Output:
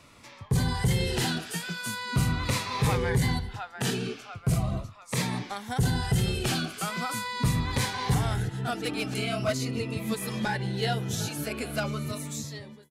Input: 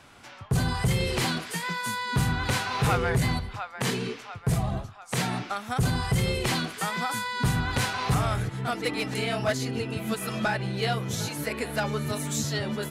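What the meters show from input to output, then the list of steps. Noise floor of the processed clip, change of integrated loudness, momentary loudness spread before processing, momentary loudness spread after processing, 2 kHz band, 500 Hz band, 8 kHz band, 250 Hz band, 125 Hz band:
-50 dBFS, -1.0 dB, 6 LU, 7 LU, -3.5 dB, -2.0 dB, -1.0 dB, -0.5 dB, 0.0 dB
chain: fade out at the end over 1.10 s; Shepard-style phaser falling 0.41 Hz

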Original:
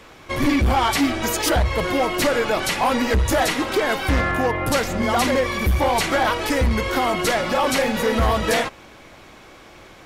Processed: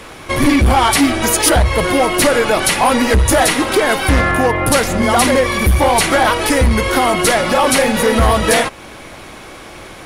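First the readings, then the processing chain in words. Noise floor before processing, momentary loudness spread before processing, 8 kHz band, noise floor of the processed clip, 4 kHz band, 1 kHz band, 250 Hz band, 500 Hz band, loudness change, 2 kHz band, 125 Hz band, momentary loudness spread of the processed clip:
-45 dBFS, 3 LU, +11.5 dB, -35 dBFS, +7.0 dB, +7.0 dB, +7.0 dB, +7.0 dB, +7.0 dB, +7.0 dB, +6.5 dB, 3 LU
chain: peaking EQ 9.8 kHz +13 dB 0.22 oct; in parallel at -2.5 dB: compression, threshold -32 dBFS, peak gain reduction 16 dB; on the sum: trim +5.5 dB

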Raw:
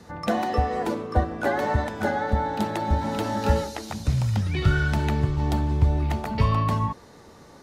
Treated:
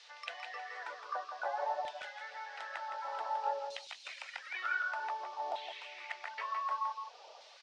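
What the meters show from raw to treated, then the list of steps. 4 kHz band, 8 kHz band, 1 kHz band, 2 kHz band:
-9.0 dB, -16.0 dB, -9.5 dB, -7.0 dB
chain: spectral replace 5.56–6.03 s, 1.6–4.6 kHz both; Chebyshev band-pass 560–8800 Hz, order 3; reverb removal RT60 0.7 s; compression 2.5:1, threshold -40 dBFS, peak gain reduction 12.5 dB; LFO band-pass saw down 0.54 Hz 660–3400 Hz; band noise 2.3–5.6 kHz -68 dBFS; on a send: delay 165 ms -8 dB; on the sum: trim +5.5 dB

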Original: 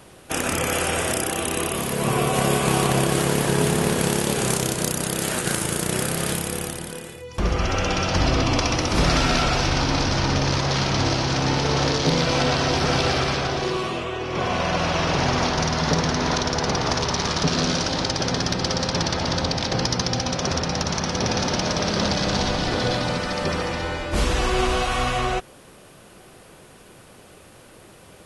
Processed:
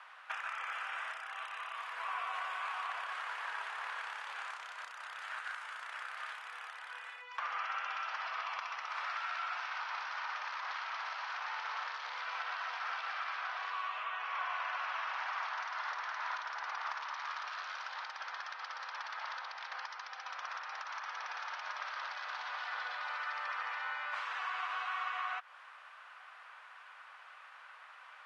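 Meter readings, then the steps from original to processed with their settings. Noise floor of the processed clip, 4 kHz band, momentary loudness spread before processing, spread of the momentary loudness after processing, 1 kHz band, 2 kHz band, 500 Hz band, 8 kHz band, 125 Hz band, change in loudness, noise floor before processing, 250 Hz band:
-55 dBFS, -21.5 dB, 5 LU, 9 LU, -12.5 dB, -10.5 dB, -32.0 dB, -33.5 dB, under -40 dB, -17.5 dB, -48 dBFS, under -40 dB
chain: inverse Chebyshev high-pass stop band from 330 Hz, stop band 60 dB; compression 5:1, threshold -37 dBFS, peak gain reduction 14.5 dB; low-pass 1.5 kHz 12 dB/octave; trim +5.5 dB

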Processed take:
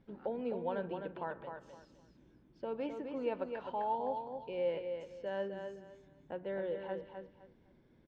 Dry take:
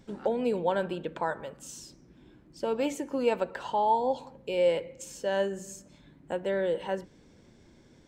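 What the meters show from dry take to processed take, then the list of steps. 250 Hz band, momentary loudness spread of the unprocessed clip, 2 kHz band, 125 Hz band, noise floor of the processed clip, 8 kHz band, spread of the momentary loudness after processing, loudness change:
-8.5 dB, 16 LU, -11.0 dB, -8.5 dB, -66 dBFS, under -30 dB, 15 LU, -9.5 dB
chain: distance through air 300 m; feedback delay 257 ms, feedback 24%, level -6.5 dB; trim -9 dB

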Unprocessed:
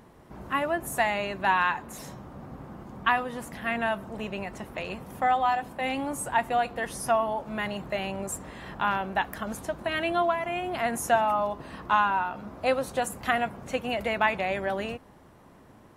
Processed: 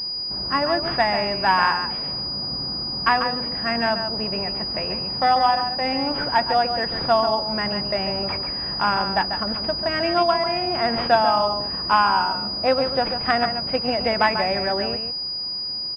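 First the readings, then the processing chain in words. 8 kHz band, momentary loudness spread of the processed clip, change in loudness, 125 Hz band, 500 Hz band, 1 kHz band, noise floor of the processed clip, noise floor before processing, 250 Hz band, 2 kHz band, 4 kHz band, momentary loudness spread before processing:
under -15 dB, 7 LU, +7.0 dB, +6.5 dB, +6.0 dB, +6.0 dB, -29 dBFS, -54 dBFS, +6.0 dB, +4.0 dB, +18.5 dB, 12 LU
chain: delay 142 ms -8 dB; class-D stage that switches slowly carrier 4.9 kHz; trim +5.5 dB

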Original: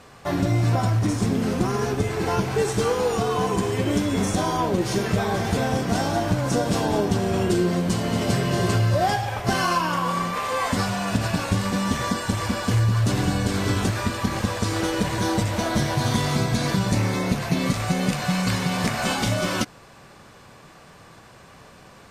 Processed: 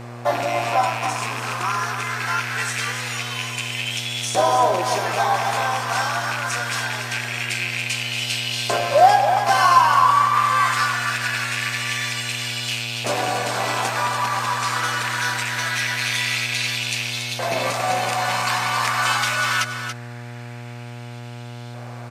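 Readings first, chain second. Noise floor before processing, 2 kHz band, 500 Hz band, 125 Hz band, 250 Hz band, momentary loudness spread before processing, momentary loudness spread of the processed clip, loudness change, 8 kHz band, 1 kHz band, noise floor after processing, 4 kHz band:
-48 dBFS, +8.0 dB, -0.5 dB, -8.0 dB, -13.5 dB, 3 LU, 9 LU, +2.5 dB, +4.0 dB, +7.5 dB, -35 dBFS, +6.5 dB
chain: rattle on loud lows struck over -23 dBFS, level -22 dBFS; LFO high-pass saw up 0.23 Hz 590–3400 Hz; mains buzz 120 Hz, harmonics 22, -39 dBFS -6 dB/octave; delay 282 ms -8.5 dB; trim +3 dB

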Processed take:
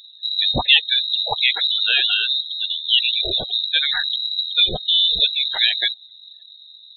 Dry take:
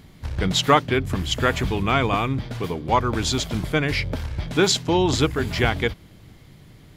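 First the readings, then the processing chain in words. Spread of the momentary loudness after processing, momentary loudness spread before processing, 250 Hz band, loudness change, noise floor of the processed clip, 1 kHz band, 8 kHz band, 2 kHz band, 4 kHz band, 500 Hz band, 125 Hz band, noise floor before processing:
7 LU, 9 LU, -15.5 dB, +5.0 dB, -46 dBFS, -9.5 dB, under -40 dB, +3.0 dB, +13.0 dB, -12.5 dB, -15.0 dB, -48 dBFS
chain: spectral gate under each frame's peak -15 dB strong; frequency inversion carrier 3.9 kHz; trim +2.5 dB

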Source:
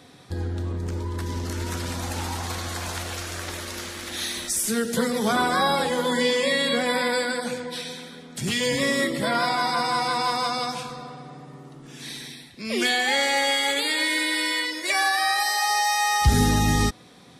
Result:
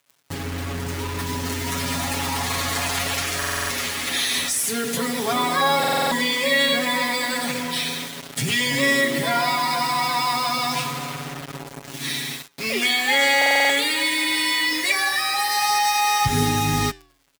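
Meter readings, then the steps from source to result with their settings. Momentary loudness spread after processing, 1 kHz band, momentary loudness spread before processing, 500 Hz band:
11 LU, +2.5 dB, 15 LU, 0.0 dB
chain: peaking EQ 11 kHz +3 dB 0.53 oct; band-stop 1.5 kHz, Q 9.3; in parallel at -1 dB: compressor with a negative ratio -31 dBFS, ratio -1; on the sum: bit crusher 5-bit; flange 0.26 Hz, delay 4.1 ms, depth 9 ms, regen -88%; dynamic bell 2.2 kHz, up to +5 dB, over -41 dBFS, Q 1; crackle 300 per s -50 dBFS; high-pass 51 Hz; comb 7.2 ms, depth 84%; buffer glitch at 3.38/5.79/13.37 s, samples 2048, times 6

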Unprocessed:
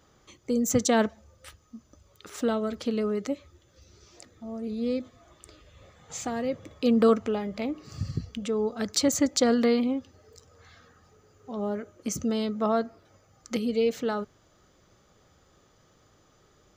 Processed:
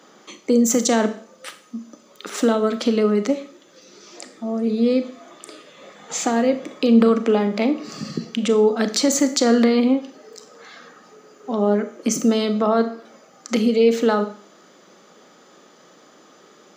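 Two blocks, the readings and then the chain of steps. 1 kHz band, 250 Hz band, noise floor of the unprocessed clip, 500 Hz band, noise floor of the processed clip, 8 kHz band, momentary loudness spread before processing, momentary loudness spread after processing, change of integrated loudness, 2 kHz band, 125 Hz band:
+7.5 dB, +8.5 dB, -63 dBFS, +8.0 dB, -51 dBFS, +7.5 dB, 13 LU, 16 LU, +8.0 dB, +7.5 dB, +5.0 dB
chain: steep high-pass 190 Hz 36 dB/octave; treble shelf 9.9 kHz -8 dB; in parallel at -2 dB: compression, threshold -33 dBFS, peak gain reduction 16.5 dB; on the sum: peak limiter -17 dBFS, peak gain reduction 8 dB; Schroeder reverb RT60 0.49 s, combs from 27 ms, DRR 9.5 dB; trim +8 dB

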